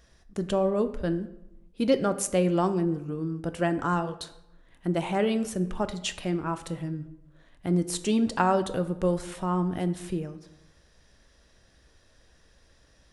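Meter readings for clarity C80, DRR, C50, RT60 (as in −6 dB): 16.0 dB, 9.5 dB, 13.5 dB, 0.90 s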